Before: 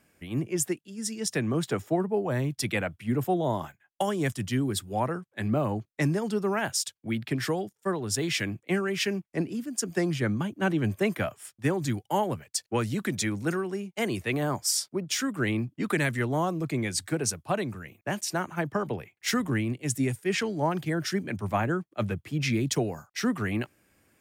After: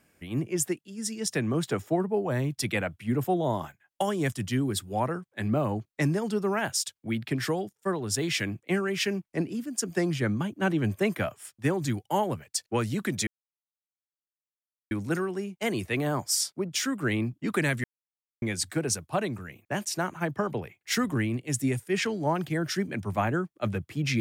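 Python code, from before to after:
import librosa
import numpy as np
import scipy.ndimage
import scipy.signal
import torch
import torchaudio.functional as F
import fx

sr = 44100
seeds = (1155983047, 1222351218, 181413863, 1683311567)

y = fx.edit(x, sr, fx.insert_silence(at_s=13.27, length_s=1.64),
    fx.silence(start_s=16.2, length_s=0.58), tone=tone)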